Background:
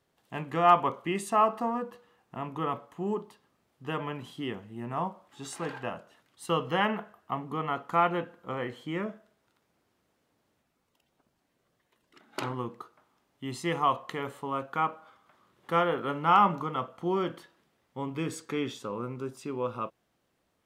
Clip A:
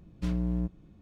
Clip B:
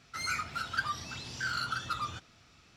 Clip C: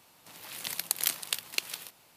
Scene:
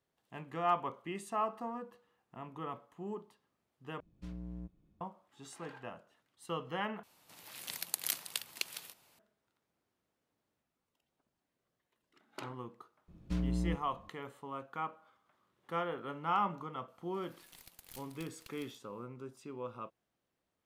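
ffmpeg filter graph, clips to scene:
-filter_complex "[1:a]asplit=2[a][b];[3:a]asplit=2[c][d];[0:a]volume=-10.5dB[e];[d]aeval=exprs='(tanh(22.4*val(0)+0.65)-tanh(0.65))/22.4':c=same[f];[e]asplit=3[g][h][i];[g]atrim=end=4.004[j];[a]atrim=end=1.01,asetpts=PTS-STARTPTS,volume=-15dB[k];[h]atrim=start=5.006:end=7.034[l];[c]atrim=end=2.16,asetpts=PTS-STARTPTS,volume=-6.5dB[m];[i]atrim=start=9.186[n];[b]atrim=end=1.01,asetpts=PTS-STARTPTS,volume=-4dB,afade=t=in:d=0.004:c=hsin,afade=t=out:st=1.006:d=0.004:c=hsin,adelay=13080[o];[f]atrim=end=2.16,asetpts=PTS-STARTPTS,volume=-16.5dB,afade=t=in:d=0.004:c=hsin,afade=t=out:st=2.156:d=0.004:c=hsin,adelay=16880[p];[j][k]acrossfade=d=0.004:c1=hsin:c2=hsin[q];[q][l]acrossfade=d=0.004:c1=hsin:c2=hsin[r];[r][m]acrossfade=d=0.004:c1=hsin:c2=hsin[s];[s][n]acrossfade=d=0.004:c1=hsin:c2=hsin[t];[t][o][p]amix=inputs=3:normalize=0"

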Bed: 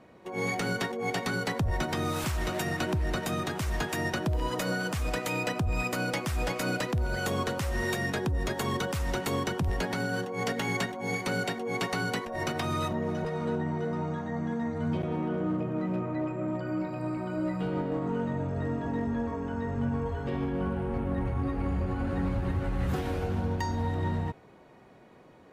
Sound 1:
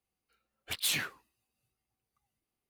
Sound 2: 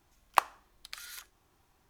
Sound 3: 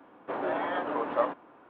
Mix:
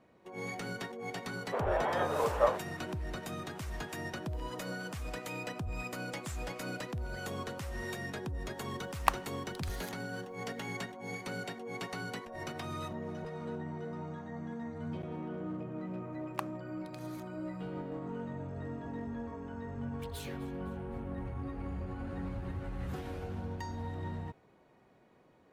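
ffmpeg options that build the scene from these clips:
-filter_complex "[1:a]asplit=2[a][b];[2:a]asplit=2[c][d];[0:a]volume=-9.5dB[e];[3:a]lowshelf=f=360:t=q:w=3:g=-6[f];[a]bandpass=f=7.3k:t=q:w=6.4:csg=0[g];[b]aecho=1:1:256|512|768|1024:0.119|0.057|0.0274|0.0131[h];[f]atrim=end=1.69,asetpts=PTS-STARTPTS,volume=-2.5dB,afade=t=in:d=0.004:c=hsin,afade=t=out:st=1.686:d=0.004:c=hsin,adelay=1240[i];[g]atrim=end=2.69,asetpts=PTS-STARTPTS,volume=-10dB,afade=t=in:d=0.004:c=hsin,afade=t=out:st=2.686:d=0.004:c=hsin,adelay=238581S[j];[c]atrim=end=1.89,asetpts=PTS-STARTPTS,volume=-3dB,afade=t=in:d=0.004:c=hsin,afade=t=out:st=1.886:d=0.004:c=hsin,adelay=8700[k];[d]atrim=end=1.89,asetpts=PTS-STARTPTS,volume=-13.5dB,afade=t=in:d=0.004:c=hsin,afade=t=out:st=1.886:d=0.004:c=hsin,adelay=16010[l];[h]atrim=end=2.69,asetpts=PTS-STARTPTS,volume=-17.5dB,afade=t=in:d=0.004:c=hsin,afade=t=out:st=2.686:d=0.004:c=hsin,adelay=19310[m];[e][i][j][k][l][m]amix=inputs=6:normalize=0"

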